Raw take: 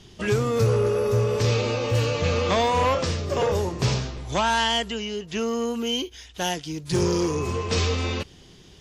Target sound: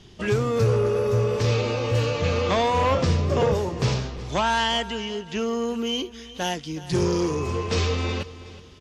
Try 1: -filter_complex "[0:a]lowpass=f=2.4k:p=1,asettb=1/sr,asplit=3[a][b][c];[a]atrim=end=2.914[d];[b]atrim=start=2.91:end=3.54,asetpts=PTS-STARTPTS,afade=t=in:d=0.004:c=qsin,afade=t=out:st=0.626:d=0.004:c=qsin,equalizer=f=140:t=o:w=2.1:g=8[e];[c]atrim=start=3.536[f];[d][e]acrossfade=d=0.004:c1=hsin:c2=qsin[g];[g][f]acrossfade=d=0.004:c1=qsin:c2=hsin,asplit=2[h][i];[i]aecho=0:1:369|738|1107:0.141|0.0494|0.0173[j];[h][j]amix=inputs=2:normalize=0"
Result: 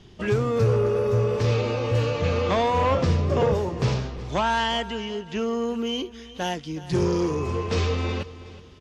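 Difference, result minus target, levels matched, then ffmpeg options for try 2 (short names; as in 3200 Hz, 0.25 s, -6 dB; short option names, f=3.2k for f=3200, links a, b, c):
4000 Hz band -3.0 dB
-filter_complex "[0:a]lowpass=f=5.5k:p=1,asettb=1/sr,asplit=3[a][b][c];[a]atrim=end=2.914[d];[b]atrim=start=2.91:end=3.54,asetpts=PTS-STARTPTS,afade=t=in:d=0.004:c=qsin,afade=t=out:st=0.626:d=0.004:c=qsin,equalizer=f=140:t=o:w=2.1:g=8[e];[c]atrim=start=3.536[f];[d][e]acrossfade=d=0.004:c1=hsin:c2=qsin[g];[g][f]acrossfade=d=0.004:c1=qsin:c2=hsin,asplit=2[h][i];[i]aecho=0:1:369|738|1107:0.141|0.0494|0.0173[j];[h][j]amix=inputs=2:normalize=0"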